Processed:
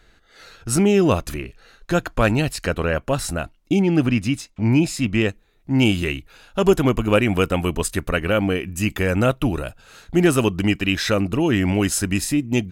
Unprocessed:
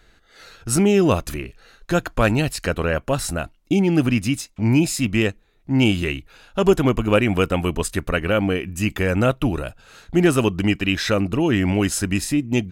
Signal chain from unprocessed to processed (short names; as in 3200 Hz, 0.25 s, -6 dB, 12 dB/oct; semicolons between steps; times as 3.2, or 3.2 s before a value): high shelf 8000 Hz -2 dB, from 3.82 s -10 dB, from 5.28 s +4 dB